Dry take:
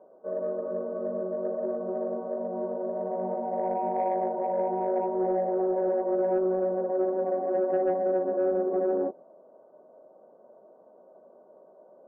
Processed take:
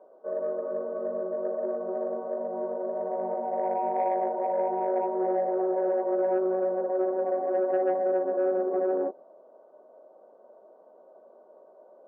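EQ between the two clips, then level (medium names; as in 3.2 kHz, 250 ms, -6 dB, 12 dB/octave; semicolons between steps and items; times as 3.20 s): high-pass 310 Hz 12 dB/octave; distance through air 220 m; treble shelf 2 kHz +8.5 dB; +1.0 dB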